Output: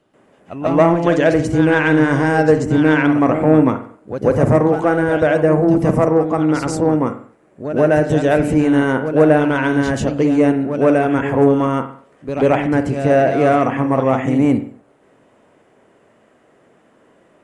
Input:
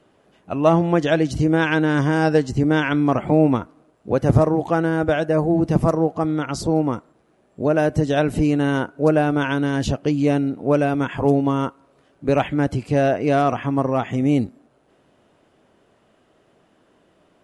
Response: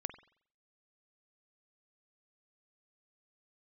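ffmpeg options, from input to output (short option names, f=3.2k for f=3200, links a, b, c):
-filter_complex "[0:a]acontrast=74,asplit=2[a][b];[b]equalizer=f=125:t=o:w=1:g=5,equalizer=f=250:t=o:w=1:g=7,equalizer=f=500:t=o:w=1:g=9,equalizer=f=1k:t=o:w=1:g=6,equalizer=f=2k:t=o:w=1:g=11,equalizer=f=4k:t=o:w=1:g=-4,equalizer=f=8k:t=o:w=1:g=11[c];[1:a]atrim=start_sample=2205,afade=t=out:st=0.3:d=0.01,atrim=end_sample=13671,adelay=137[d];[c][d]afir=irnorm=-1:irlink=0,volume=1.5dB[e];[a][e]amix=inputs=2:normalize=0,volume=-11.5dB"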